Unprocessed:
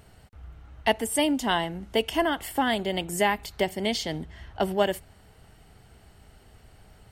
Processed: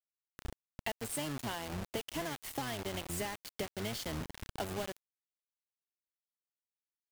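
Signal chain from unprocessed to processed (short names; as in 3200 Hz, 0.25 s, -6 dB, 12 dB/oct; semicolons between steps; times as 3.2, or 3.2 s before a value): octaver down 1 oct, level -1 dB; compressor 10:1, threshold -31 dBFS, peak gain reduction 15 dB; bit-crush 6-bit; gain -4.5 dB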